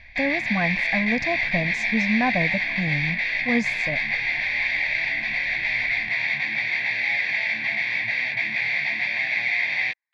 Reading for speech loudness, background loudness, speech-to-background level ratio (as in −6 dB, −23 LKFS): −27.5 LKFS, −22.5 LKFS, −5.0 dB